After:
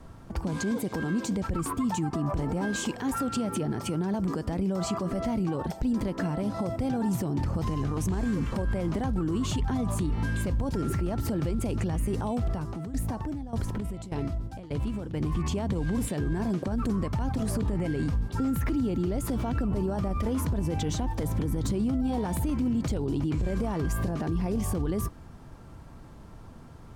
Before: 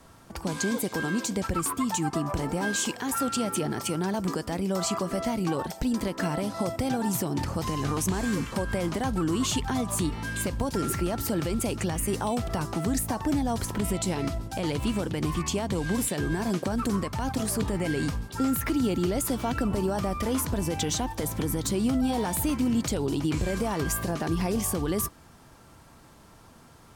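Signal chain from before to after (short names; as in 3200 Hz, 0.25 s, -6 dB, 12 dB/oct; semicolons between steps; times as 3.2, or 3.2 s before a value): tilt -2.5 dB/oct; limiter -21 dBFS, peak gain reduction 11.5 dB; 12.52–15.13 tremolo saw down 1.7 Hz, depth 70% -> 95%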